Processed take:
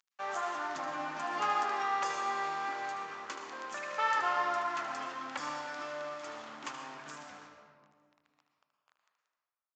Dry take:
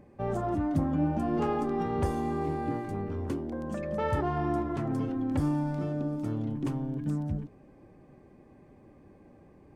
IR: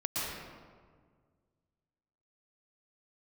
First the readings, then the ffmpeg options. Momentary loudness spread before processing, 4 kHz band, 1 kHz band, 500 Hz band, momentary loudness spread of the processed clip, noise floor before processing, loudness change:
6 LU, n/a, +3.0 dB, -9.0 dB, 13 LU, -56 dBFS, -4.0 dB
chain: -filter_complex "[0:a]highshelf=f=3.8k:g=8.5,acrossover=split=2200[a][b];[a]aeval=exprs='sgn(val(0))*max(abs(val(0))-0.00447,0)':c=same[c];[c][b]amix=inputs=2:normalize=0,acrusher=bits=9:mix=0:aa=0.000001,highpass=f=1.2k:t=q:w=1.5,aecho=1:1:76:0.335,asplit=2[d][e];[1:a]atrim=start_sample=2205,lowshelf=f=140:g=4[f];[e][f]afir=irnorm=-1:irlink=0,volume=-7.5dB[g];[d][g]amix=inputs=2:normalize=0,aresample=16000,aresample=44100"

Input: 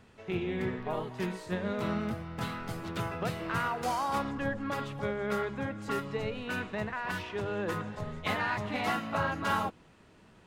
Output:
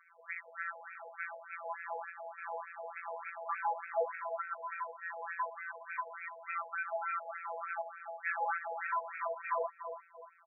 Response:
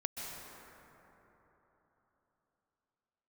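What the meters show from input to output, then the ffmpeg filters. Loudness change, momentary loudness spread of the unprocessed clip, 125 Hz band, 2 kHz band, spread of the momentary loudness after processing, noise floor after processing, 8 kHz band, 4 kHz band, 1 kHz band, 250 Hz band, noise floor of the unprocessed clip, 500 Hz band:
-6.0 dB, 6 LU, under -40 dB, -3.5 dB, 9 LU, -62 dBFS, under -30 dB, under -40 dB, -3.0 dB, under -40 dB, -59 dBFS, -6.5 dB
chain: -filter_complex "[0:a]afftfilt=real='hypot(re,im)*cos(PI*b)':imag='0':win_size=1024:overlap=0.75,asplit=2[a][b];[b]adelay=350,lowpass=f=850:p=1,volume=-8dB,asplit=2[c][d];[d]adelay=350,lowpass=f=850:p=1,volume=0.52,asplit=2[e][f];[f]adelay=350,lowpass=f=850:p=1,volume=0.52,asplit=2[g][h];[h]adelay=350,lowpass=f=850:p=1,volume=0.52,asplit=2[i][j];[j]adelay=350,lowpass=f=850:p=1,volume=0.52,asplit=2[k][l];[l]adelay=350,lowpass=f=850:p=1,volume=0.52[m];[c][e][g][i][k][m]amix=inputs=6:normalize=0[n];[a][n]amix=inputs=2:normalize=0,highpass=f=330:t=q:w=0.5412,highpass=f=330:t=q:w=1.307,lowpass=f=2.9k:t=q:w=0.5176,lowpass=f=2.9k:t=q:w=0.7071,lowpass=f=2.9k:t=q:w=1.932,afreqshift=-370,asoftclip=type=tanh:threshold=-33dB,afftfilt=real='re*between(b*sr/1024,660*pow(1900/660,0.5+0.5*sin(2*PI*3.4*pts/sr))/1.41,660*pow(1900/660,0.5+0.5*sin(2*PI*3.4*pts/sr))*1.41)':imag='im*between(b*sr/1024,660*pow(1900/660,0.5+0.5*sin(2*PI*3.4*pts/sr))/1.41,660*pow(1900/660,0.5+0.5*sin(2*PI*3.4*pts/sr))*1.41)':win_size=1024:overlap=0.75,volume=9.5dB"

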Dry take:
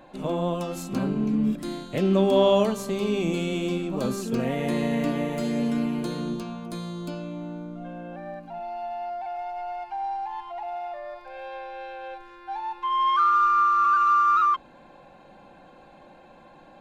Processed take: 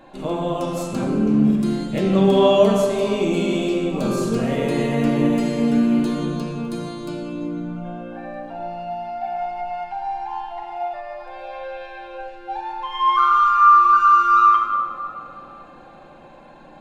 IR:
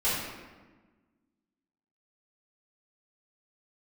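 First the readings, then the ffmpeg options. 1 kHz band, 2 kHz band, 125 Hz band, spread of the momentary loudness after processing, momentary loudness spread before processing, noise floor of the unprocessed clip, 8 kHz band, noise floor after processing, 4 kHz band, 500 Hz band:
+6.5 dB, +5.5 dB, +5.5 dB, 20 LU, 18 LU, -51 dBFS, +4.0 dB, -44 dBFS, +4.5 dB, +5.5 dB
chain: -filter_complex "[0:a]asplit=2[a][b];[1:a]atrim=start_sample=2205,asetrate=22491,aresample=44100[c];[b][c]afir=irnorm=-1:irlink=0,volume=-13dB[d];[a][d]amix=inputs=2:normalize=0"

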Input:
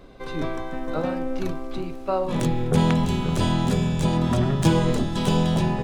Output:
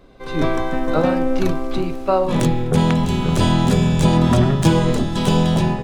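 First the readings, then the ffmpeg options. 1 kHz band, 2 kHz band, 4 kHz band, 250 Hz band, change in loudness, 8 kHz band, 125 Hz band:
+6.0 dB, +6.0 dB, +5.0 dB, +5.5 dB, +5.5 dB, +5.0 dB, +5.5 dB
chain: -af "dynaudnorm=f=220:g=3:m=12.5dB,volume=-2dB"

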